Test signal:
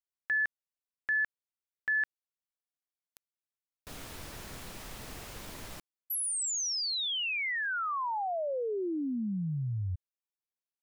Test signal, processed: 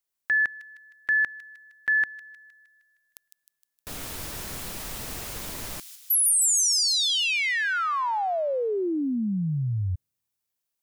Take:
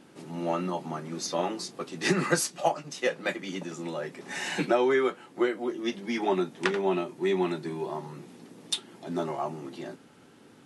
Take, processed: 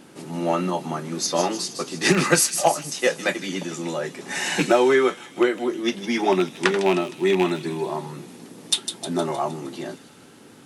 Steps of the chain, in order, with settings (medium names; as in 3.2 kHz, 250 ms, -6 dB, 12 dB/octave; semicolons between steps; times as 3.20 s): rattle on loud lows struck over -29 dBFS, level -22 dBFS; treble shelf 7.4 kHz +7 dB; feedback echo behind a high-pass 155 ms, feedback 55%, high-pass 3.7 kHz, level -6.5 dB; trim +6.5 dB